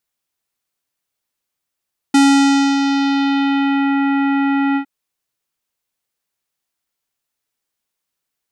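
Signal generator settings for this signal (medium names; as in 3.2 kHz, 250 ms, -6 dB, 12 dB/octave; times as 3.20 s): synth note square C#4 24 dB/octave, low-pass 2.4 kHz, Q 1.1, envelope 2 oct, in 1.81 s, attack 6.2 ms, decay 0.62 s, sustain -6.5 dB, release 0.09 s, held 2.62 s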